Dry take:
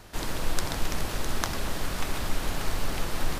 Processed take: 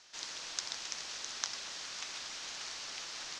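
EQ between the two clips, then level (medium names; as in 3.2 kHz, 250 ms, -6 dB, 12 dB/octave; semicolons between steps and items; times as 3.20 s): band-pass filter 6.2 kHz, Q 2.5; distance through air 150 m; +10.5 dB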